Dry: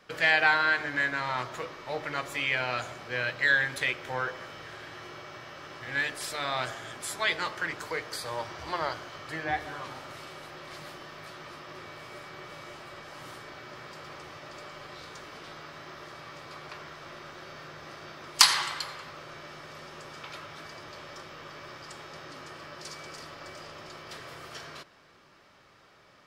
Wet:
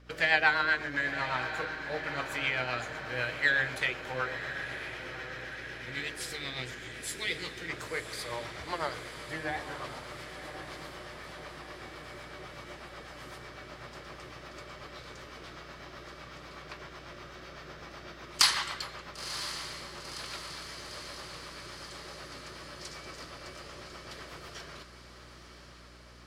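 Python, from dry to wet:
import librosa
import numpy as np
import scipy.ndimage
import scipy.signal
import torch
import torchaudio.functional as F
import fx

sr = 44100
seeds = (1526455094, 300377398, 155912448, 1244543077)

p1 = fx.spec_box(x, sr, start_s=4.96, length_s=2.73, low_hz=520.0, high_hz=1800.0, gain_db=-14)
p2 = fx.rotary(p1, sr, hz=8.0)
p3 = p2 + fx.echo_diffused(p2, sr, ms=1010, feedback_pct=65, wet_db=-10.0, dry=0)
y = fx.add_hum(p3, sr, base_hz=60, snr_db=19)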